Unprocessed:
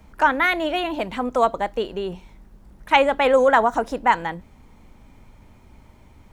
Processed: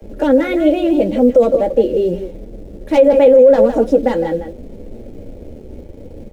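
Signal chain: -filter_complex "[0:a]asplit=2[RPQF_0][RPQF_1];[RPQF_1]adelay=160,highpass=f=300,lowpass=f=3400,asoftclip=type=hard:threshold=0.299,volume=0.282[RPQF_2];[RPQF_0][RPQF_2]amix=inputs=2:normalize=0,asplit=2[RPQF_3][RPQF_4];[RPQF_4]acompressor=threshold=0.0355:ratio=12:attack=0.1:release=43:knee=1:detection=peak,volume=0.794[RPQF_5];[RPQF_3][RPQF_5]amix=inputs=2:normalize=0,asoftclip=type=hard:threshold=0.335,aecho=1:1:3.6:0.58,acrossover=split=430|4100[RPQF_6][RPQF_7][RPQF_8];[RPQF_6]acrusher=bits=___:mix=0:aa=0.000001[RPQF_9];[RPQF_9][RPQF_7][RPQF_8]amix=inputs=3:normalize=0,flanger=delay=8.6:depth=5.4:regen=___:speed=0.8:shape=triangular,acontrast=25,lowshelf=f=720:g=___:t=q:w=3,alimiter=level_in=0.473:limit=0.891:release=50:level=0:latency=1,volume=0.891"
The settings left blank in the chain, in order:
6, -32, 13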